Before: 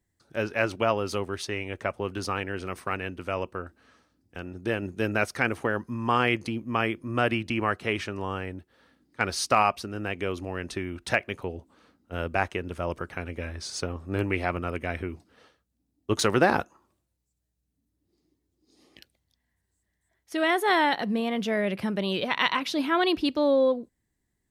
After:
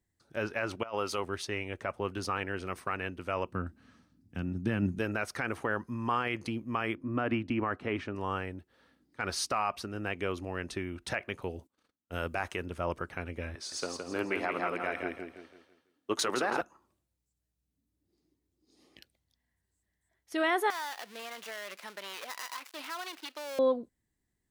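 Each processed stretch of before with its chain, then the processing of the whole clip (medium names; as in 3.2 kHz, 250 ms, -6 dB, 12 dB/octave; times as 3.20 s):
0.83–1.24 s: bass shelf 320 Hz -10.5 dB + band-stop 1.7 kHz, Q 13 + compressor with a negative ratio -31 dBFS, ratio -0.5
3.49–4.99 s: high-pass 64 Hz + resonant low shelf 310 Hz +9.5 dB, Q 1.5
6.95–8.15 s: low-pass 1.6 kHz 6 dB/octave + peaking EQ 270 Hz +9 dB 0.28 oct
11.43–12.66 s: gate -58 dBFS, range -26 dB + treble shelf 4.5 kHz +10.5 dB
13.55–16.61 s: high-pass 260 Hz + feedback delay 166 ms, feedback 39%, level -4.5 dB
20.70–23.59 s: dead-time distortion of 0.17 ms + high-pass 900 Hz + compression 5:1, threshold -32 dBFS
whole clip: dynamic bell 1.2 kHz, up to +5 dB, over -36 dBFS, Q 0.87; peak limiter -15 dBFS; trim -4 dB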